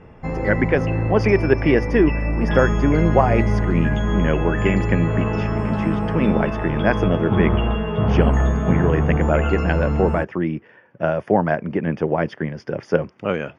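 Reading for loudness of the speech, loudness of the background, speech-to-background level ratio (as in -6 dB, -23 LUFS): -22.0 LUFS, -22.0 LUFS, 0.0 dB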